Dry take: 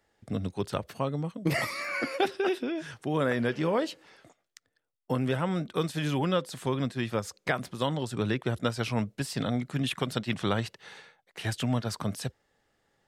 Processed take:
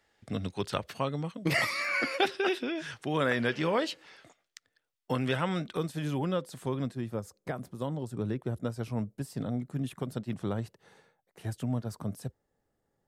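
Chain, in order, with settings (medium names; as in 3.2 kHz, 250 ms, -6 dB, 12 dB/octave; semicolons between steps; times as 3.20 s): peaking EQ 3 kHz +6.5 dB 2.9 oct, from 5.77 s -6 dB, from 6.95 s -14.5 dB; trim -2.5 dB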